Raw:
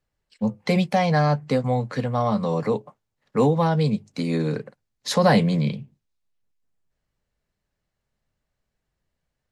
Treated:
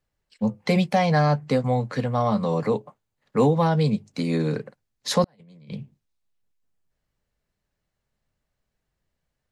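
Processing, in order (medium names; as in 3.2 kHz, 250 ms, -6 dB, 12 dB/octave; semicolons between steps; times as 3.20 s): 2.32–3.46 s: band-stop 5.5 kHz, Q 15; 5.24–5.73 s: compressor with a negative ratio -39 dBFS, ratio -0.5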